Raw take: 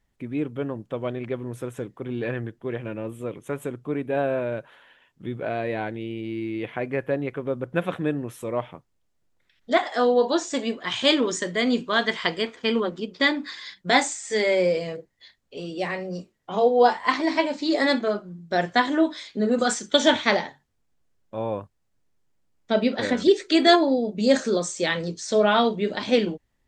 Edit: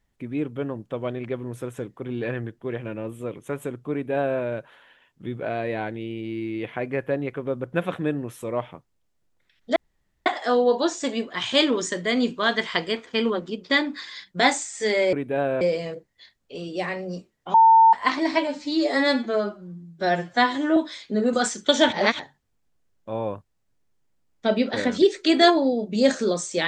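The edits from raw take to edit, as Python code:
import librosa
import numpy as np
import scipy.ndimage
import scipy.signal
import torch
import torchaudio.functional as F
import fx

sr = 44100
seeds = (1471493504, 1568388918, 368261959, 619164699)

y = fx.edit(x, sr, fx.duplicate(start_s=3.92, length_s=0.48, to_s=14.63),
    fx.insert_room_tone(at_s=9.76, length_s=0.5),
    fx.bleep(start_s=16.56, length_s=0.39, hz=900.0, db=-10.0),
    fx.stretch_span(start_s=17.49, length_s=1.53, factor=1.5),
    fx.reverse_span(start_s=20.18, length_s=0.27), tone=tone)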